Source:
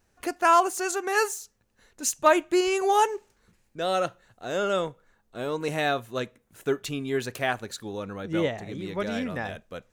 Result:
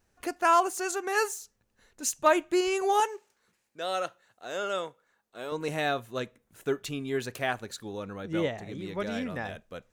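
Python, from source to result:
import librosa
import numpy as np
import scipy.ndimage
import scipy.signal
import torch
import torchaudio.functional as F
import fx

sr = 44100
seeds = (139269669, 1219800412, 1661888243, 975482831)

y = fx.highpass(x, sr, hz=570.0, slope=6, at=(3.0, 5.52))
y = y * 10.0 ** (-3.0 / 20.0)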